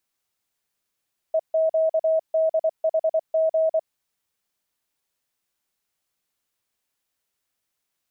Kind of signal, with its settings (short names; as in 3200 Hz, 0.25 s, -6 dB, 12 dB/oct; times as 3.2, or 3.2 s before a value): Morse "EQDHG" 24 wpm 641 Hz -17 dBFS